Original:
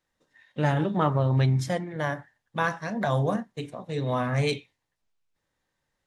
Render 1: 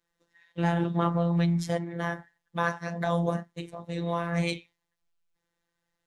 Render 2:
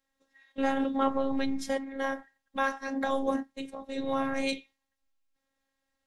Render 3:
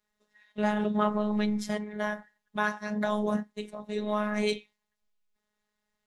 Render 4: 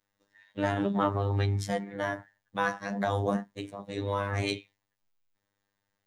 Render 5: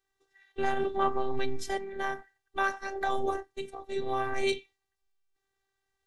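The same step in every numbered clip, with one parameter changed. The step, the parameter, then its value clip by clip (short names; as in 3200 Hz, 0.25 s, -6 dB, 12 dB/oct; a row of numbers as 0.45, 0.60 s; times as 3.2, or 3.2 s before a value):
robotiser, frequency: 170, 270, 210, 100, 390 Hz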